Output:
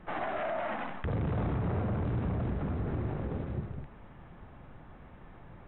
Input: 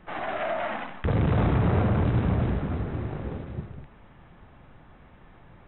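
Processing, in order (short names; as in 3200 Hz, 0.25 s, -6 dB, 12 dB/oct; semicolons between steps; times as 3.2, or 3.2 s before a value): high shelf 2600 Hz -8 dB; limiter -26.5 dBFS, peak gain reduction 10.5 dB; gain +1 dB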